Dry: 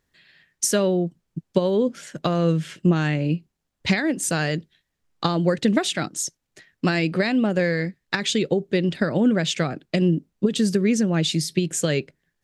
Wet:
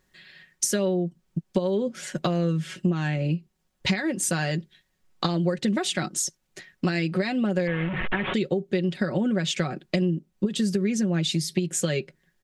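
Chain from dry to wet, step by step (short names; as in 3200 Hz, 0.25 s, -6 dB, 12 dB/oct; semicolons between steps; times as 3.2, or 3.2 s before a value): 7.67–8.34 delta modulation 16 kbps, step -24.5 dBFS; comb 5.4 ms, depth 56%; compressor 3:1, threshold -29 dBFS, peak gain reduction 14.5 dB; gain +4 dB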